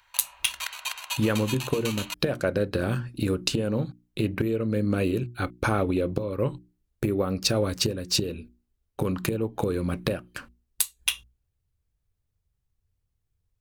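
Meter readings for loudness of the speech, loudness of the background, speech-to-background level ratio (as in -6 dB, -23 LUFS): -27.5 LUFS, -34.0 LUFS, 6.5 dB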